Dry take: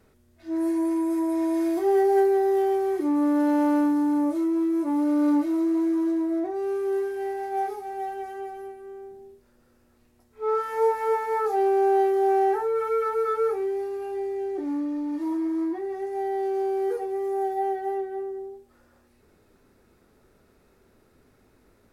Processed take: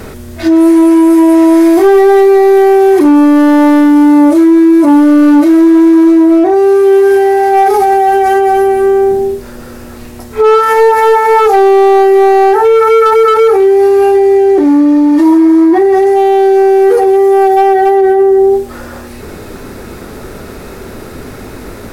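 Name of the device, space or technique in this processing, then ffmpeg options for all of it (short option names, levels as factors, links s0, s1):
loud club master: -af "acompressor=threshold=0.0562:ratio=3,asoftclip=type=hard:threshold=0.0631,alimiter=level_in=56.2:limit=0.891:release=50:level=0:latency=1,volume=0.891"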